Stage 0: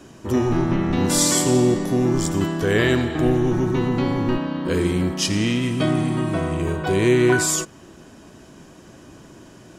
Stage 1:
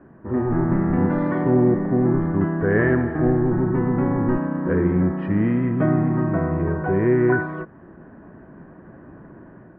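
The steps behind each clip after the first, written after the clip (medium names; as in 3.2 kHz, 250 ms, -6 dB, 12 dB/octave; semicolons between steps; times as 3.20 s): elliptic low-pass 1.8 kHz, stop band 80 dB; peaking EQ 180 Hz +4 dB 0.71 oct; level rider gain up to 5 dB; trim -4 dB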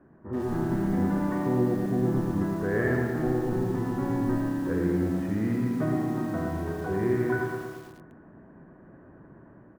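distance through air 72 m; feedback delay 112 ms, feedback 56%, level -5.5 dB; bit-crushed delay 86 ms, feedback 55%, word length 6-bit, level -8 dB; trim -8.5 dB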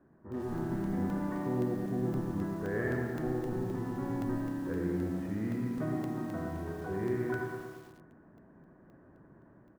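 crackling interface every 0.26 s, samples 64, zero, from 0.32 s; trim -7 dB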